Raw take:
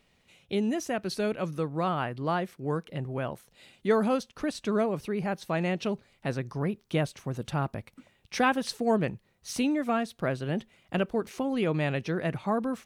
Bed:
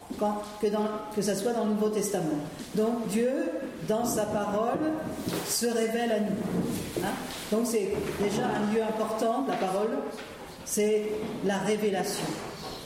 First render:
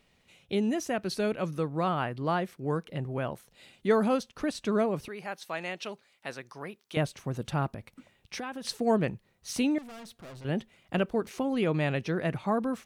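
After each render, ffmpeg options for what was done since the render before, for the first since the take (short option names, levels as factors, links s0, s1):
-filter_complex "[0:a]asettb=1/sr,asplit=3[s0][s1][s2];[s0]atrim=end=5.084[s3];[s1]atrim=start=5.08:end=6.97,asetpts=PTS-STARTPTS,afade=t=in:d=0.004:c=qsin,afade=t=out:st=1.886:d=0.004:c=qsin,highpass=f=1100:p=1[s4];[s2]atrim=start=6.966[s5];[s3][s4]acrossfade=d=0.004:c1=hsin:c2=qsin[s6];[s6][s5]acrossfade=d=0.004:c1=qsin:c2=hsin,asettb=1/sr,asplit=3[s7][s8][s9];[s7]atrim=end=7.684[s10];[s8]atrim=start=7.68:end=8.65,asetpts=PTS-STARTPTS,afade=t=in:d=0.004:c=qsin,afade=t=out:st=0.966:d=0.004:c=qsin,acompressor=threshold=0.02:ratio=6:attack=3.2:release=140:knee=1:detection=peak[s11];[s9]atrim=start=8.646[s12];[s10][s11]acrossfade=d=0.004:c1=hsin:c2=qsin[s13];[s13][s12]acrossfade=d=0.004:c1=qsin:c2=hsin,asettb=1/sr,asplit=3[s14][s15][s16];[s14]atrim=end=9.784[s17];[s15]atrim=start=9.78:end=10.45,asetpts=PTS-STARTPTS,afade=t=in:d=0.004:c=qsin,afade=t=out:st=0.666:d=0.004:c=qsin,aeval=exprs='(tanh(158*val(0)+0.25)-tanh(0.25))/158':c=same[s18];[s16]atrim=start=10.446[s19];[s17][s18]acrossfade=d=0.004:c1=hsin:c2=qsin[s20];[s20][s19]acrossfade=d=0.004:c1=qsin:c2=hsin"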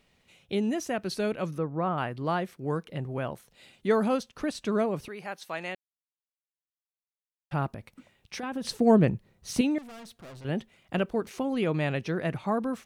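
-filter_complex "[0:a]asettb=1/sr,asplit=3[s0][s1][s2];[s0]atrim=end=1.584[s3];[s1]atrim=start=1.58:end=1.98,asetpts=PTS-STARTPTS,afade=t=in:d=0.004:c=qsin,afade=t=out:st=0.396:d=0.004:c=qsin,lowpass=1700[s4];[s2]atrim=start=1.976[s5];[s3][s4]acrossfade=d=0.004:c1=hsin:c2=qsin[s6];[s6][s5]acrossfade=d=0.004:c1=qsin:c2=hsin,asettb=1/sr,asplit=3[s7][s8][s9];[s7]atrim=end=8.434[s10];[s8]atrim=start=8.43:end=9.61,asetpts=PTS-STARTPTS,afade=t=in:d=0.004:c=qsin,afade=t=out:st=1.176:d=0.004:c=qsin,lowshelf=f=500:g=9[s11];[s9]atrim=start=9.606[s12];[s10][s11]acrossfade=d=0.004:c1=hsin:c2=qsin[s13];[s13][s12]acrossfade=d=0.004:c1=qsin:c2=hsin,asplit=3[s14][s15][s16];[s14]atrim=end=5.75,asetpts=PTS-STARTPTS,afade=t=out:st=5.746:d=0.004:c=hsin[s17];[s15]atrim=start=5.75:end=7.51,asetpts=PTS-STARTPTS,volume=0[s18];[s16]atrim=start=7.51,asetpts=PTS-STARTPTS,afade=t=in:d=0.004:c=hsin[s19];[s17][s18][s19]concat=n=3:v=0:a=1"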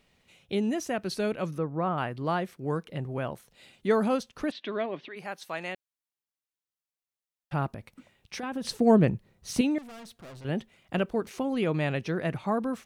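-filter_complex "[0:a]asplit=3[s0][s1][s2];[s0]afade=t=out:st=4.5:d=0.02[s3];[s1]highpass=f=210:w=0.5412,highpass=f=210:w=1.3066,equalizer=f=210:t=q:w=4:g=-8,equalizer=f=470:t=q:w=4:g=-8,equalizer=f=860:t=q:w=4:g=-4,equalizer=f=1300:t=q:w=4:g=-6,equalizer=f=1900:t=q:w=4:g=5,equalizer=f=3400:t=q:w=4:g=8,lowpass=f=3800:w=0.5412,lowpass=f=3800:w=1.3066,afade=t=in:st=4.5:d=0.02,afade=t=out:st=5.15:d=0.02[s4];[s2]afade=t=in:st=5.15:d=0.02[s5];[s3][s4][s5]amix=inputs=3:normalize=0"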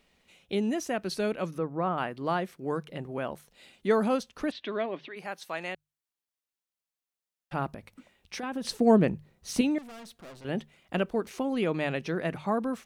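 -af "equalizer=f=120:t=o:w=0.51:g=-9.5,bandreject=f=50:t=h:w=6,bandreject=f=100:t=h:w=6,bandreject=f=150:t=h:w=6"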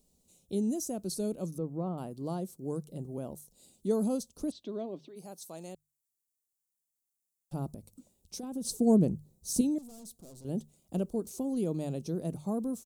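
-af "firequalizer=gain_entry='entry(160,0);entry(1800,-30);entry(4000,-8);entry(7300,7)':delay=0.05:min_phase=1"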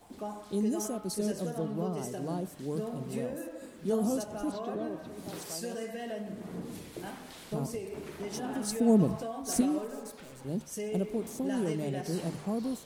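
-filter_complex "[1:a]volume=0.282[s0];[0:a][s0]amix=inputs=2:normalize=0"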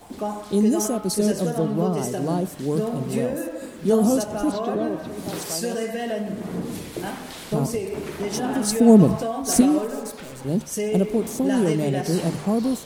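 -af "volume=3.55"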